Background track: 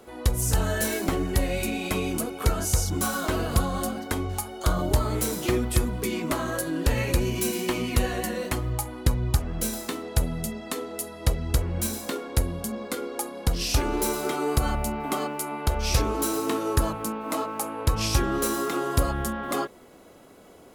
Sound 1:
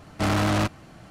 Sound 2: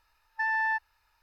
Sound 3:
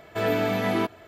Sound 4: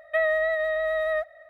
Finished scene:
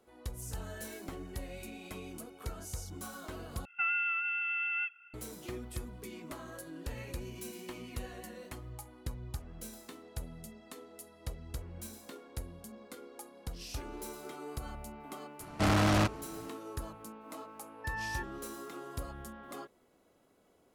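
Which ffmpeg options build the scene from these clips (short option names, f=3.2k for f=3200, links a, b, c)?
-filter_complex "[0:a]volume=-17.5dB[a];[4:a]lowpass=f=2.8k:t=q:w=0.5098,lowpass=f=2.8k:t=q:w=0.6013,lowpass=f=2.8k:t=q:w=0.9,lowpass=f=2.8k:t=q:w=2.563,afreqshift=-3300[b];[a]asplit=2[c][d];[c]atrim=end=3.654[e];[b]atrim=end=1.49,asetpts=PTS-STARTPTS,volume=-8.5dB[f];[d]atrim=start=5.136[g];[1:a]atrim=end=1.1,asetpts=PTS-STARTPTS,volume=-4dB,afade=t=in:d=0.004:c=hsin,afade=t=out:st=1.096:d=0.004:c=hsin,adelay=679140S[h];[2:a]atrim=end=1.22,asetpts=PTS-STARTPTS,volume=-11.5dB,afade=t=in:d=0.004:c=hsin,afade=t=out:st=1.216:d=0.004:c=hsin,adelay=17450[i];[e][f]acrossfade=d=0.004:c1=hsin:c2=hsin[j];[j][g]acrossfade=d=0.004:c1=hsin:c2=hsin[k];[k][h][i]amix=inputs=3:normalize=0"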